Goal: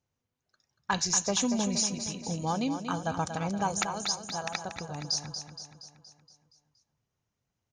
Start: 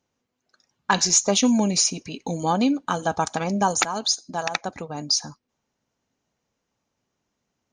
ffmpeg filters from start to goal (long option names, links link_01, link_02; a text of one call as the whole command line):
ffmpeg -i in.wav -af "lowshelf=frequency=170:width_type=q:width=1.5:gain=7.5,aecho=1:1:235|470|705|940|1175|1410|1645:0.376|0.207|0.114|0.0625|0.0344|0.0189|0.0104,volume=-8.5dB" out.wav